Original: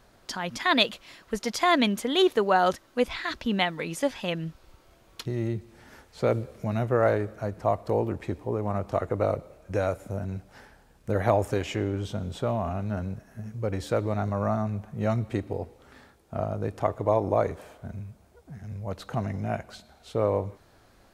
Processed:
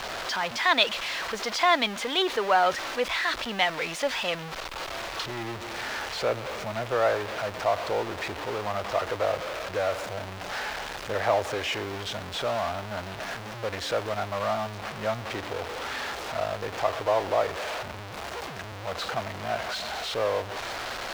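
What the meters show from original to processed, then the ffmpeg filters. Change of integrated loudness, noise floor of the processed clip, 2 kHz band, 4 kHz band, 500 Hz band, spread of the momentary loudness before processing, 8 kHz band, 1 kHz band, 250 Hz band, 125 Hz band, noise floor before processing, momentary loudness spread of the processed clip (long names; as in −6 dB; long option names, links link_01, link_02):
−0.5 dB, −38 dBFS, +5.0 dB, +4.0 dB, −1.0 dB, 16 LU, +4.5 dB, +2.0 dB, −8.5 dB, −9.5 dB, −59 dBFS, 11 LU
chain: -filter_complex "[0:a]aeval=exprs='val(0)+0.5*0.0596*sgn(val(0))':channel_layout=same,acrossover=split=500 5700:gain=0.178 1 0.141[link_01][link_02][link_03];[link_01][link_02][link_03]amix=inputs=3:normalize=0,acrusher=bits=8:mix=0:aa=0.000001"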